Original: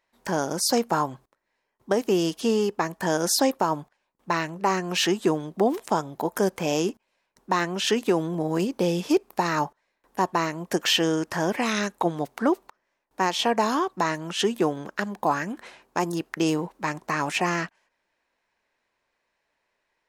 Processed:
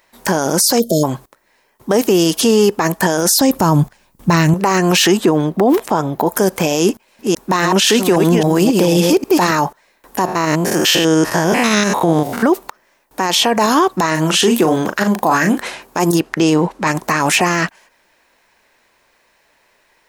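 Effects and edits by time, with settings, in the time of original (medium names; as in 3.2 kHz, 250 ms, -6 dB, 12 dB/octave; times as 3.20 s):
0.80–1.04 s: spectral selection erased 670–3100 Hz
3.41–4.54 s: tone controls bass +15 dB, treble +4 dB
5.17–6.27 s: peaking EQ 9.4 kHz -10.5 dB 2.2 oct
6.81–9.52 s: chunks repeated in reverse 270 ms, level -7.5 dB
10.26–12.43 s: spectrogram pixelated in time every 100 ms
14.09–15.58 s: doubling 38 ms -8.5 dB
16.20–16.87 s: distance through air 58 m
whole clip: treble shelf 8.5 kHz +10.5 dB; loudness maximiser +21 dB; trim -3 dB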